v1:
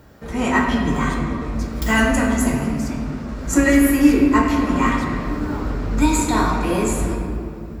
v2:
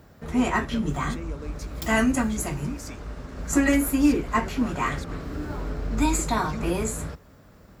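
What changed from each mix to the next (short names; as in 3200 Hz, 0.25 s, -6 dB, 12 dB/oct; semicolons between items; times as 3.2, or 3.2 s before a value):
reverb: off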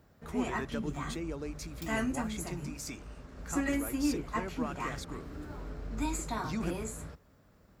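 background -11.0 dB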